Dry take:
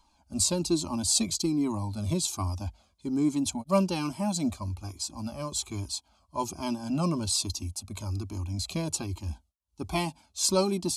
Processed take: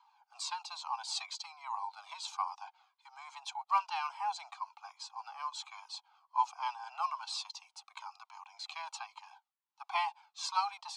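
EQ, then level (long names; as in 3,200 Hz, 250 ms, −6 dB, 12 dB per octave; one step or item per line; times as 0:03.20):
Butterworth high-pass 770 Hz 96 dB per octave
head-to-tape spacing loss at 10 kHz 34 dB
+6.5 dB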